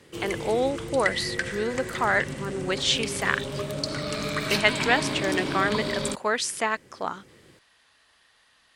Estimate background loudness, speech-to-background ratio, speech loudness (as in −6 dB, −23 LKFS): −30.5 LKFS, 4.0 dB, −26.5 LKFS